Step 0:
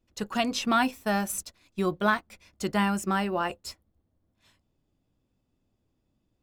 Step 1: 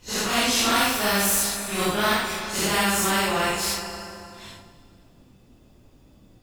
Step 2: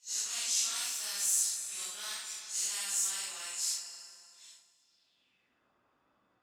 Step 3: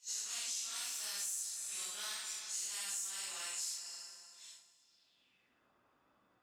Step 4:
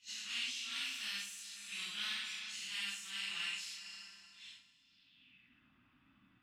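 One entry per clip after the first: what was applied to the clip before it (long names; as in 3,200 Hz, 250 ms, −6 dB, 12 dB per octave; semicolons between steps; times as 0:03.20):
random phases in long frames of 200 ms; four-comb reverb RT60 2 s, combs from 30 ms, DRR 13.5 dB; every bin compressed towards the loudest bin 2 to 1; level +5 dB
band-pass filter sweep 7,100 Hz → 1,300 Hz, 0:04.79–0:05.70; level −1.5 dB
downward compressor 6 to 1, threshold −38 dBFS, peak gain reduction 12 dB
drawn EQ curve 270 Hz 0 dB, 460 Hz −26 dB, 2,800 Hz +1 dB, 6,900 Hz −22 dB; level +10.5 dB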